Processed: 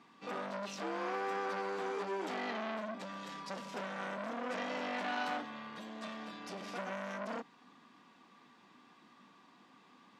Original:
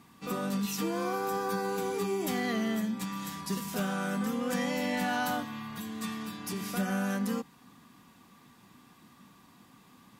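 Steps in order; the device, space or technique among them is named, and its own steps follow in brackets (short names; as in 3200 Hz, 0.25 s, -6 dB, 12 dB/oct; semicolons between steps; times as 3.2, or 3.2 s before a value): high shelf 9000 Hz -7.5 dB; public-address speaker with an overloaded transformer (core saturation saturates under 1400 Hz; BPF 290–5000 Hz); gain -1.5 dB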